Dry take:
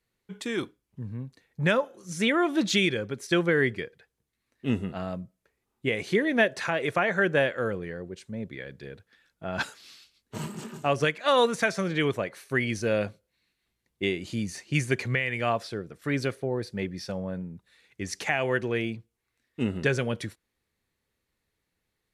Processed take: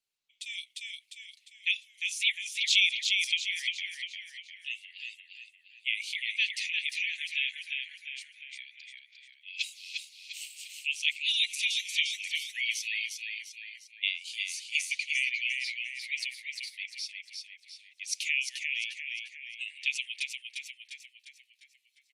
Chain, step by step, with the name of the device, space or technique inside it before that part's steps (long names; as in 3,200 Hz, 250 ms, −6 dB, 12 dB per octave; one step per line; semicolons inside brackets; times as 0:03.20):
Butterworth high-pass 2,300 Hz 72 dB per octave
high-shelf EQ 11,000 Hz −6 dB
echo with shifted repeats 351 ms, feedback 46%, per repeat −43 Hz, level −4.5 dB
noise-suppressed video call (high-pass filter 170 Hz 24 dB per octave; gate on every frequency bin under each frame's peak −30 dB strong; automatic gain control gain up to 10 dB; level −4 dB; Opus 24 kbit/s 48,000 Hz)